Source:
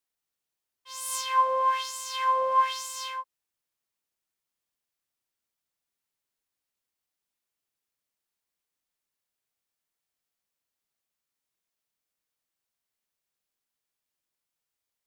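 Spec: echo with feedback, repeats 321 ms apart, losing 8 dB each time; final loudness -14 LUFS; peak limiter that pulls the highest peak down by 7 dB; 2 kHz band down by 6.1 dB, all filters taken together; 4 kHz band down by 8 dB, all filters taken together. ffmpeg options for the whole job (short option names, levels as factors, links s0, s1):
-af "equalizer=f=2000:t=o:g=-6,equalizer=f=4000:t=o:g=-9,alimiter=limit=0.0794:level=0:latency=1,aecho=1:1:321|642|963|1284|1605:0.398|0.159|0.0637|0.0255|0.0102,volume=7.08"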